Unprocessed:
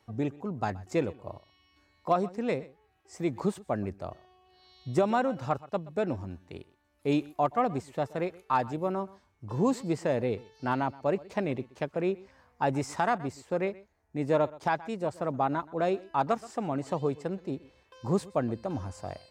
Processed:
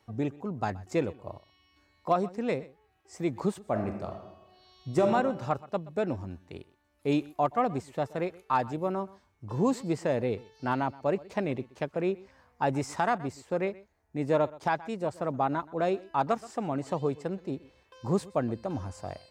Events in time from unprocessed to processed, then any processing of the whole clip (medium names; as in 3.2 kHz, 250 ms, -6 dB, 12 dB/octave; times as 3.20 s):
3.59–5.10 s: reverb throw, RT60 0.95 s, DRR 4 dB